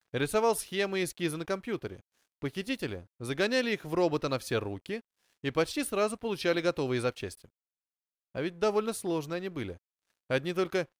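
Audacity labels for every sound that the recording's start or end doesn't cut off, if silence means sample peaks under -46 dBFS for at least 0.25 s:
2.420000	5.000000	sound
5.440000	7.460000	sound
8.350000	9.770000	sound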